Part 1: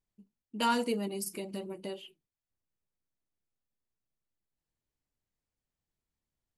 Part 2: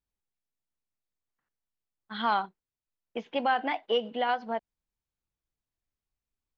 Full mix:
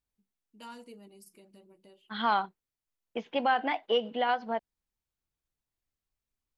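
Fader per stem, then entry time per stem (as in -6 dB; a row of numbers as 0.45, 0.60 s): -18.0, 0.0 dB; 0.00, 0.00 s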